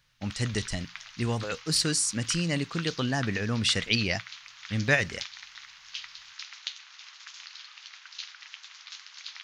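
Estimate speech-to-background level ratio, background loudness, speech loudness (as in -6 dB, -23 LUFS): 13.5 dB, -41.5 LUFS, -28.0 LUFS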